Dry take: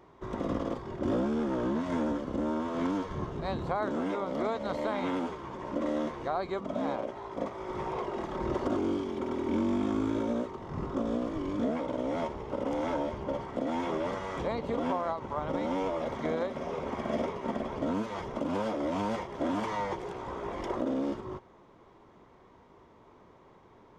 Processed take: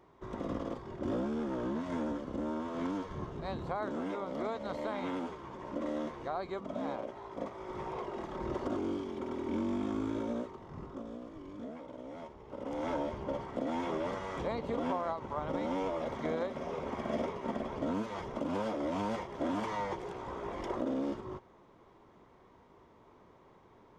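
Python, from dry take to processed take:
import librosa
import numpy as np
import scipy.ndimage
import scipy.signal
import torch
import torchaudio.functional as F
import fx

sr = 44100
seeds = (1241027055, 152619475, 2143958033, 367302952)

y = fx.gain(x, sr, db=fx.line((10.39, -5.0), (11.15, -13.5), (12.38, -13.5), (12.89, -3.0)))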